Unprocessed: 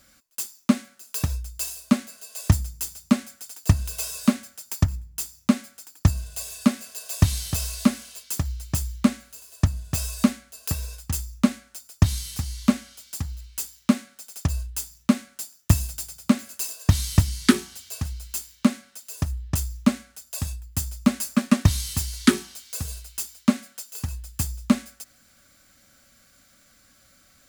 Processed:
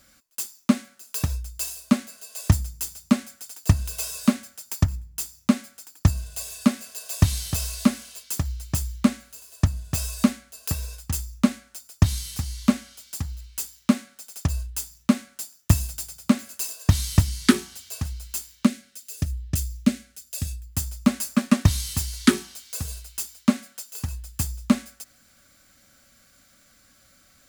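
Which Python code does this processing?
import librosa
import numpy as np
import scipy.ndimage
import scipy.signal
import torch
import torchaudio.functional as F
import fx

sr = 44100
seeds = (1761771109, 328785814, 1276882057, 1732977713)

y = fx.peak_eq(x, sr, hz=970.0, db=-14.5, octaves=0.94, at=(18.66, 20.7))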